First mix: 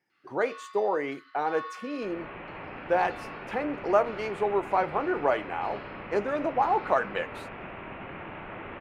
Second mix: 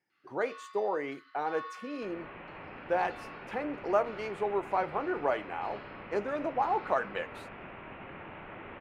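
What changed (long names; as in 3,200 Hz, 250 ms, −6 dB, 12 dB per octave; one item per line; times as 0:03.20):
speech −4.5 dB
first sound −3.5 dB
second sound: send −6.0 dB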